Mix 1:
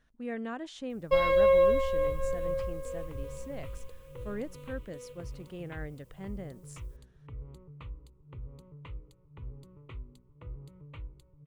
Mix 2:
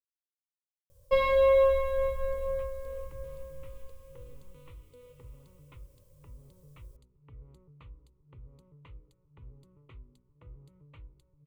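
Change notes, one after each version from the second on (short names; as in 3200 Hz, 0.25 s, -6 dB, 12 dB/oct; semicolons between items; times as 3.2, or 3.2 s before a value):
speech: muted; second sound -7.0 dB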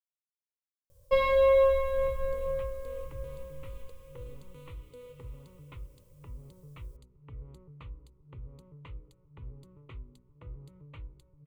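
second sound +5.5 dB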